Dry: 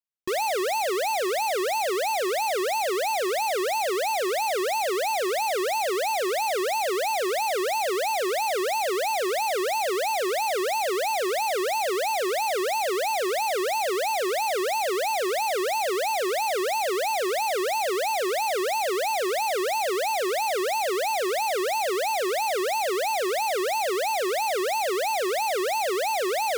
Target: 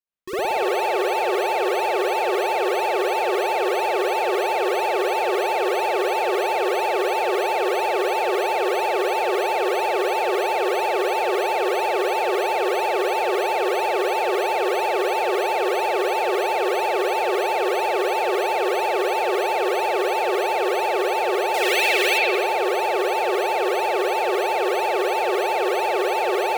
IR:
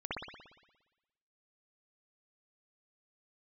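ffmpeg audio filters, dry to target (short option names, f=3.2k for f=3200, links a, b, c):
-filter_complex "[0:a]asettb=1/sr,asplit=3[a][b][c];[a]atrim=end=21.544[d];[b]atrim=start=21.54:end=22.18,asetpts=PTS-STARTPTS,afade=t=in:d=0.004:c=qsin,afade=t=out:st=0.636:d=0.004:c=qsin,highshelf=f=1.6k:t=q:w=1.5:g=9.5[e];[c]atrim=start=22.176[f];[d][e]acrossfade=d=0.004:c1=hsin:c2=qsin[g];[g][f]acrossfade=d=0.004:c1=qsin:c2=hsin[h];[1:a]atrim=start_sample=2205[i];[h][i]afir=irnorm=-1:irlink=0"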